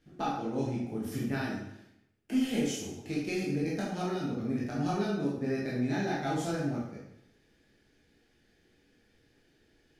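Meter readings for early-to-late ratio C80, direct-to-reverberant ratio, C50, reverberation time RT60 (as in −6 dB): 5.0 dB, −7.0 dB, 1.0 dB, 0.80 s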